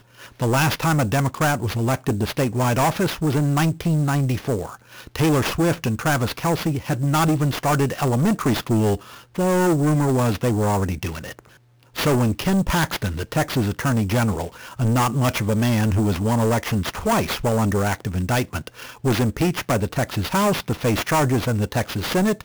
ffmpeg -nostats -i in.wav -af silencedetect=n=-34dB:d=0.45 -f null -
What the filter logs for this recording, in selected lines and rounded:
silence_start: 11.39
silence_end: 11.96 | silence_duration: 0.57